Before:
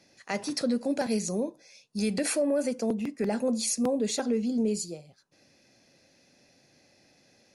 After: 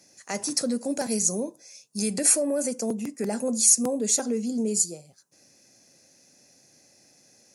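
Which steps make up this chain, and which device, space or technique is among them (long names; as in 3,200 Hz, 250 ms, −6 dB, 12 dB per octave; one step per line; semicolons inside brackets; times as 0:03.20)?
budget condenser microphone (high-pass filter 86 Hz; high shelf with overshoot 5,100 Hz +11 dB, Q 1.5)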